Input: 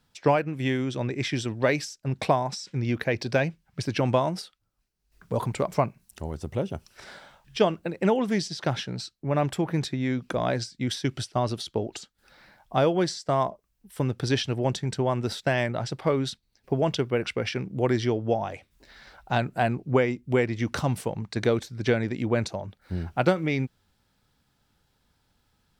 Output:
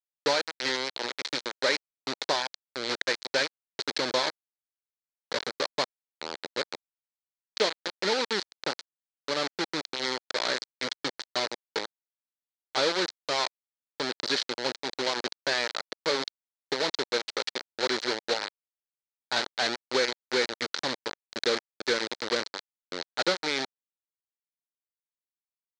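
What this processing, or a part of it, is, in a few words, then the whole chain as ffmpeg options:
hand-held game console: -af "acrusher=bits=3:mix=0:aa=0.000001,highpass=490,equalizer=frequency=700:width_type=q:width=4:gain=-10,equalizer=frequency=1100:width_type=q:width=4:gain=-6,equalizer=frequency=2700:width_type=q:width=4:gain=-6,equalizer=frequency=4200:width_type=q:width=4:gain=9,lowpass=frequency=5900:width=0.5412,lowpass=frequency=5900:width=1.3066"

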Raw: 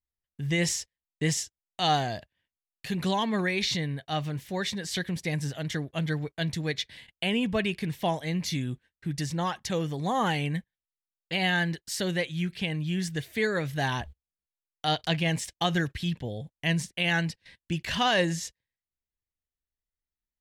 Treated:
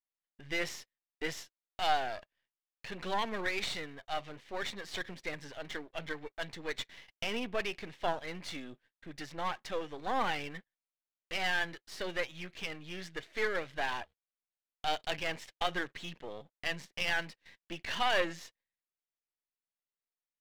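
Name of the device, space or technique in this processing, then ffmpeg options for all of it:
crystal radio: -af "highpass=380,lowpass=3300,aeval=exprs='if(lt(val(0),0),0.251*val(0),val(0))':channel_layout=same"

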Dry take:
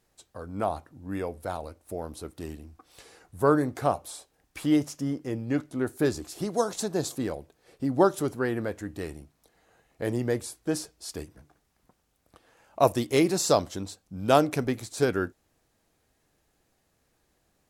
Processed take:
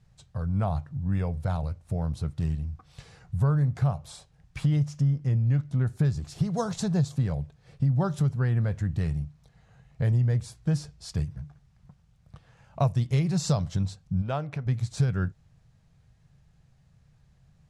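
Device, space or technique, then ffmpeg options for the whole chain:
jukebox: -filter_complex "[0:a]lowpass=6500,lowshelf=frequency=210:width_type=q:width=3:gain=13,acompressor=threshold=-22dB:ratio=4,asplit=3[link_01][link_02][link_03];[link_01]afade=type=out:start_time=14.21:duration=0.02[link_04];[link_02]bass=frequency=250:gain=-11,treble=frequency=4000:gain=-13,afade=type=in:start_time=14.21:duration=0.02,afade=type=out:start_time=14.65:duration=0.02[link_05];[link_03]afade=type=in:start_time=14.65:duration=0.02[link_06];[link_04][link_05][link_06]amix=inputs=3:normalize=0"

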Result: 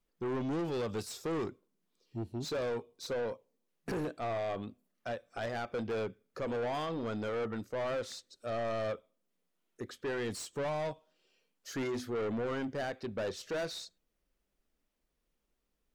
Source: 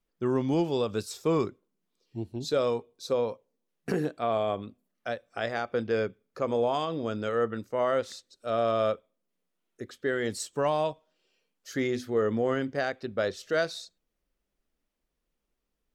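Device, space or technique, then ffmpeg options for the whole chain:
saturation between pre-emphasis and de-emphasis: -af "highshelf=frequency=4200:gain=11,asoftclip=type=tanh:threshold=-31.5dB,highshelf=frequency=4200:gain=-11"

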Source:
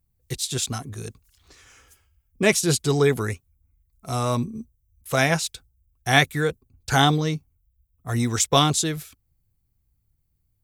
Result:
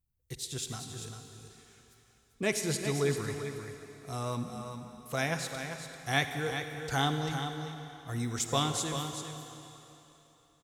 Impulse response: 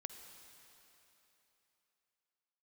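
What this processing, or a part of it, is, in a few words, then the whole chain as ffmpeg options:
cave: -filter_complex "[0:a]aecho=1:1:393:0.376[link_01];[1:a]atrim=start_sample=2205[link_02];[link_01][link_02]afir=irnorm=-1:irlink=0,volume=-7dB"

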